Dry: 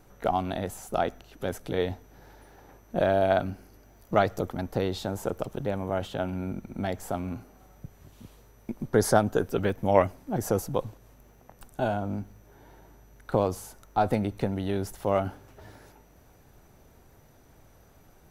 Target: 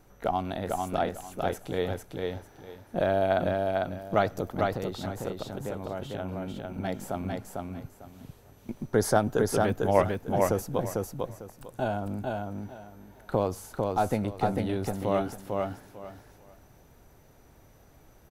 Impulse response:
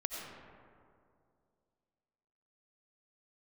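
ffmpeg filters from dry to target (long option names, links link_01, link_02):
-filter_complex "[0:a]asettb=1/sr,asplit=3[link_01][link_02][link_03];[link_01]atrim=end=4.714[link_04];[link_02]atrim=start=4.71:end=6.85,asetpts=PTS-STARTPTS,afade=type=in:duration=0.004:curve=qsin,afade=type=out:start_time=2.136:duration=0.004:curve=qsin,acompressor=threshold=-32dB:ratio=2[link_05];[link_03]atrim=start=6.846[link_06];[link_04][link_05]acrossfade=duration=0.004:curve1=hsin:curve2=qsin[link_07];[link_07][link_06]acrossfade=duration=0.004:curve1=qsin:curve2=hsin,aecho=1:1:449|898|1347:0.708|0.156|0.0343,volume=-2dB"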